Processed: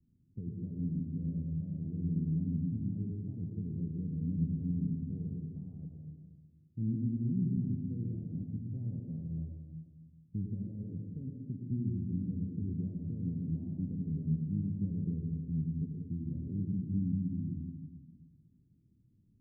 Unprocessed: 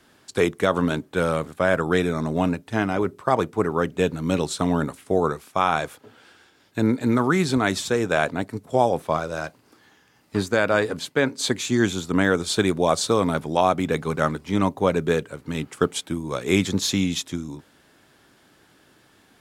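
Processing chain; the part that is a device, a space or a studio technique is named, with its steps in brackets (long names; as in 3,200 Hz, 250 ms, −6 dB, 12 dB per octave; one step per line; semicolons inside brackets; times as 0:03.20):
club heard from the street (brickwall limiter −15 dBFS, peak gain reduction 9.5 dB; low-pass filter 190 Hz 24 dB per octave; convolution reverb RT60 1.4 s, pre-delay 84 ms, DRR 1 dB)
level −4 dB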